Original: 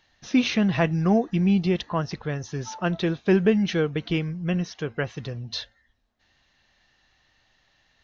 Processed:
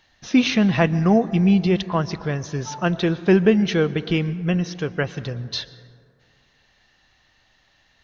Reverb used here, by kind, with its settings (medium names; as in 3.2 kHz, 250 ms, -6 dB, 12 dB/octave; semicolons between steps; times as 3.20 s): plate-style reverb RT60 2.3 s, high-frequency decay 0.35×, pre-delay 105 ms, DRR 17 dB; trim +4 dB